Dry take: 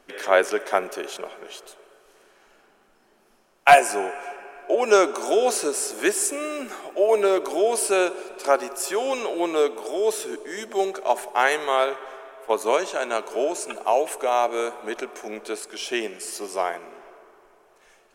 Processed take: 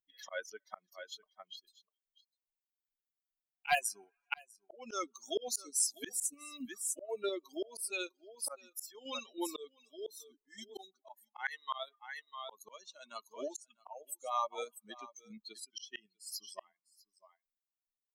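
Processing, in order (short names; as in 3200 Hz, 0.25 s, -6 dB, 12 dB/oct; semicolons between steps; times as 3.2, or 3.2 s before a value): per-bin expansion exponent 3; wow and flutter 27 cents; echo 0.648 s -21.5 dB; in parallel at -0.5 dB: level quantiser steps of 14 dB; on the sum: passive tone stack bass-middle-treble 5-5-5; auto swell 0.762 s; gain +17.5 dB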